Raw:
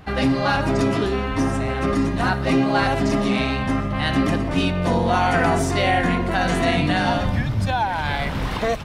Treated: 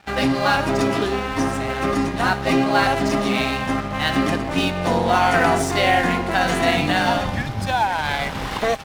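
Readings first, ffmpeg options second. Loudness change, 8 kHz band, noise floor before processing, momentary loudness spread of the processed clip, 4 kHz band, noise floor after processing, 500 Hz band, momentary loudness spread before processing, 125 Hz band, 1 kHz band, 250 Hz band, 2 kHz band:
+1.0 dB, +3.5 dB, −25 dBFS, 6 LU, +3.0 dB, −28 dBFS, +1.0 dB, 4 LU, −4.0 dB, +2.5 dB, −1.0 dB, +2.5 dB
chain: -af "lowshelf=frequency=220:gain=-8,aeval=exprs='val(0)+0.0158*sin(2*PI*800*n/s)':channel_layout=same,aeval=exprs='sgn(val(0))*max(abs(val(0))-0.0158,0)':channel_layout=same,volume=4dB"

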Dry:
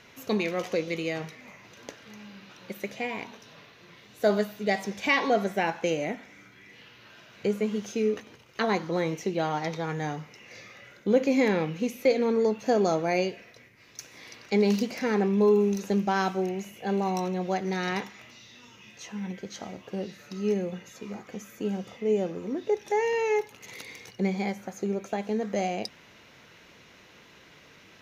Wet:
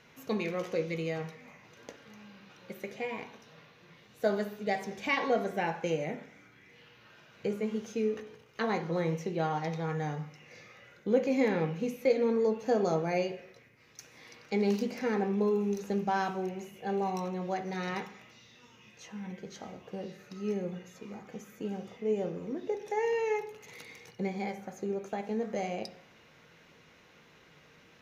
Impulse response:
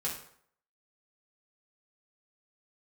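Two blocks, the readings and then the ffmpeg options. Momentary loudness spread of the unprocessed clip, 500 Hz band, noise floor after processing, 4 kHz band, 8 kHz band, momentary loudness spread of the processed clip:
20 LU, −4.5 dB, −60 dBFS, −7.5 dB, −8.0 dB, 19 LU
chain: -filter_complex "[0:a]asplit=2[link_01][link_02];[1:a]atrim=start_sample=2205,lowpass=2600[link_03];[link_02][link_03]afir=irnorm=-1:irlink=0,volume=-6.5dB[link_04];[link_01][link_04]amix=inputs=2:normalize=0,volume=-7.5dB"

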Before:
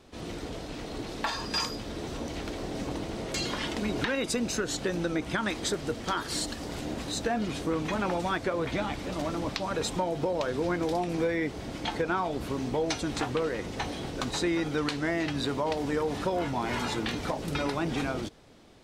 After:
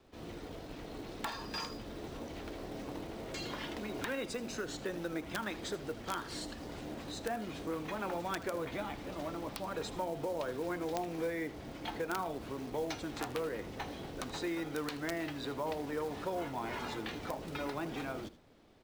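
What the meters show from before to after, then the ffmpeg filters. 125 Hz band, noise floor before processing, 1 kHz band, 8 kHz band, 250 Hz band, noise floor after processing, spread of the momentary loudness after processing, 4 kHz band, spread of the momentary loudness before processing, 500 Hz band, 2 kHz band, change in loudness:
−10.5 dB, −40 dBFS, −7.5 dB, −11.5 dB, −9.0 dB, −48 dBFS, 7 LU, −10.0 dB, 7 LU, −7.5 dB, −8.0 dB, −8.5 dB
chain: -filter_complex "[0:a]aemphasis=mode=reproduction:type=cd,bandreject=frequency=60:width_type=h:width=6,bandreject=frequency=120:width_type=h:width=6,bandreject=frequency=180:width_type=h:width=6,bandreject=frequency=240:width_type=h:width=6,acrossover=split=290|860[link_01][link_02][link_03];[link_01]alimiter=level_in=10dB:limit=-24dB:level=0:latency=1:release=68,volume=-10dB[link_04];[link_04][link_02][link_03]amix=inputs=3:normalize=0,aeval=exprs='(mod(8.41*val(0)+1,2)-1)/8.41':channel_layout=same,acrusher=bits=5:mode=log:mix=0:aa=0.000001,aecho=1:1:79:0.158,volume=-7.5dB"

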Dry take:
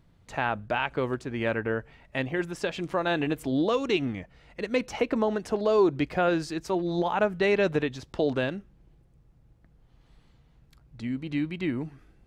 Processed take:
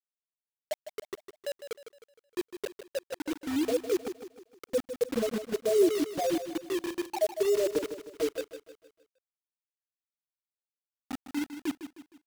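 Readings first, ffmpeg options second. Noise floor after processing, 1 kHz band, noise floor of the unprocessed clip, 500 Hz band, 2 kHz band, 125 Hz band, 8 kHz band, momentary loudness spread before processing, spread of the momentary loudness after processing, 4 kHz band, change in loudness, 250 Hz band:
below −85 dBFS, −11.0 dB, −61 dBFS, −3.0 dB, −13.0 dB, −19.0 dB, +6.0 dB, 10 LU, 16 LU, −4.5 dB, −3.5 dB, −5.0 dB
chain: -filter_complex "[0:a]asplit=2[link_01][link_02];[link_02]adelay=159,lowpass=frequency=1300:poles=1,volume=-6.5dB,asplit=2[link_03][link_04];[link_04]adelay=159,lowpass=frequency=1300:poles=1,volume=0.52,asplit=2[link_05][link_06];[link_06]adelay=159,lowpass=frequency=1300:poles=1,volume=0.52,asplit=2[link_07][link_08];[link_08]adelay=159,lowpass=frequency=1300:poles=1,volume=0.52,asplit=2[link_09][link_10];[link_10]adelay=159,lowpass=frequency=1300:poles=1,volume=0.52,asplit=2[link_11][link_12];[link_12]adelay=159,lowpass=frequency=1300:poles=1,volume=0.52[link_13];[link_03][link_05][link_07][link_09][link_11][link_13]amix=inputs=6:normalize=0[link_14];[link_01][link_14]amix=inputs=2:normalize=0,afftfilt=real='re*gte(hypot(re,im),0.501)':imag='im*gte(hypot(re,im),0.501)':win_size=1024:overlap=0.75,lowshelf=frequency=110:width_type=q:width=3:gain=8,acrusher=bits=5:mix=0:aa=0.000001,asplit=2[link_15][link_16];[link_16]aecho=0:1:155|310|465|620|775:0.299|0.128|0.0552|0.0237|0.0102[link_17];[link_15][link_17]amix=inputs=2:normalize=0"

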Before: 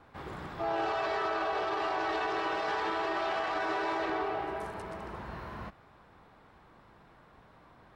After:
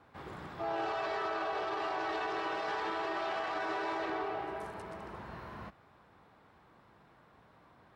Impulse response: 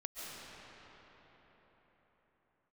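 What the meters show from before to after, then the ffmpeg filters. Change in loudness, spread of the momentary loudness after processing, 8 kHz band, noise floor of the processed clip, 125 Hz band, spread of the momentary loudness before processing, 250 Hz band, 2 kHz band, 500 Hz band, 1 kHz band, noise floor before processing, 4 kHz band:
−3.5 dB, 11 LU, can't be measured, −63 dBFS, −4.5 dB, 11 LU, −3.5 dB, −3.5 dB, −3.5 dB, −3.5 dB, −59 dBFS, −3.5 dB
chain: -af "highpass=66,volume=-3.5dB"

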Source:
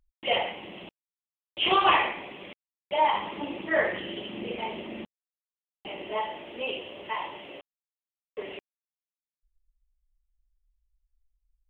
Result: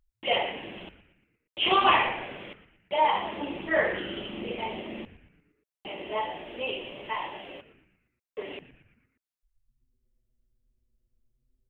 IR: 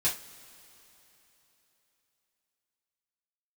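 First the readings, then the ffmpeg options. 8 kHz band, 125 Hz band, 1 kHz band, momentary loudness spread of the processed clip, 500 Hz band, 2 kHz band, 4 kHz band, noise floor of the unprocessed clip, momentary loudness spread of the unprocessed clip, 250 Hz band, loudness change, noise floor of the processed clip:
can't be measured, +2.0 dB, 0.0 dB, 20 LU, 0.0 dB, +0.5 dB, 0.0 dB, below −85 dBFS, 20 LU, +0.5 dB, 0.0 dB, below −85 dBFS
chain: -filter_complex "[0:a]asplit=6[link_01][link_02][link_03][link_04][link_05][link_06];[link_02]adelay=117,afreqshift=-130,volume=-15dB[link_07];[link_03]adelay=234,afreqshift=-260,volume=-20.2dB[link_08];[link_04]adelay=351,afreqshift=-390,volume=-25.4dB[link_09];[link_05]adelay=468,afreqshift=-520,volume=-30.6dB[link_10];[link_06]adelay=585,afreqshift=-650,volume=-35.8dB[link_11];[link_01][link_07][link_08][link_09][link_10][link_11]amix=inputs=6:normalize=0"

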